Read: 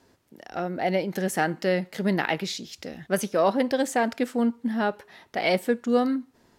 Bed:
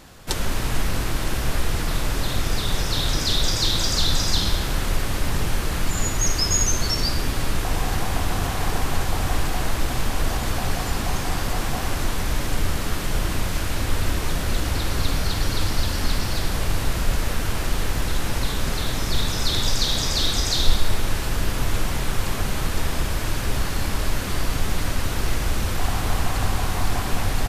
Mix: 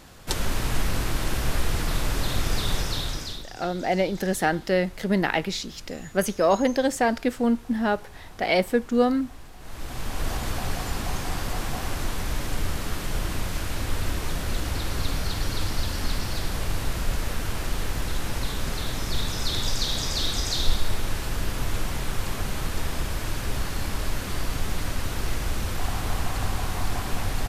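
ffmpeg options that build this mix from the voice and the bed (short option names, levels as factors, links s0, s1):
-filter_complex "[0:a]adelay=3050,volume=1.19[s0];[1:a]volume=5.96,afade=t=out:st=2.7:d=0.76:silence=0.1,afade=t=in:st=9.59:d=0.72:silence=0.133352[s1];[s0][s1]amix=inputs=2:normalize=0"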